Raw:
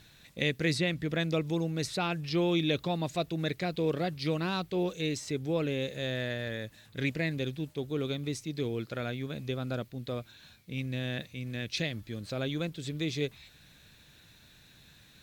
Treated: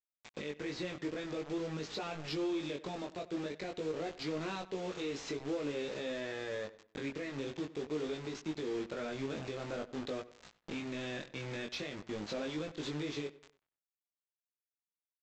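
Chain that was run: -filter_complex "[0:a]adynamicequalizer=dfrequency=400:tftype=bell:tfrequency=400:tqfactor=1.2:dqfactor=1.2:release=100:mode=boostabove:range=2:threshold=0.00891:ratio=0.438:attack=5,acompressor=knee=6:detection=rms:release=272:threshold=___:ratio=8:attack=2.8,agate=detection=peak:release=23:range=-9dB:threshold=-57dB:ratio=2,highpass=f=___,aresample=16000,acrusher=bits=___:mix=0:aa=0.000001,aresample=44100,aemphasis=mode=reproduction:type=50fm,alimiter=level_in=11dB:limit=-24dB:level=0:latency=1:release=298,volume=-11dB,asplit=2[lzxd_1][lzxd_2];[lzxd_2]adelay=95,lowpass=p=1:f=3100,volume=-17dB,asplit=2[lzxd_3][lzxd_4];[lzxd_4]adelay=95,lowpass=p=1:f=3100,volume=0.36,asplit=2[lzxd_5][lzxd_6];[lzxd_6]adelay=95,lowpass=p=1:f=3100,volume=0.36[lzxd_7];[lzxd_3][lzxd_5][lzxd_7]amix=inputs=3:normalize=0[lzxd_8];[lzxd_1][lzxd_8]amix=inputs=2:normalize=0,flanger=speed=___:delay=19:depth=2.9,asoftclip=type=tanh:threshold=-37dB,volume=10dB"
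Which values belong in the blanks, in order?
-34dB, 230, 7, 0.48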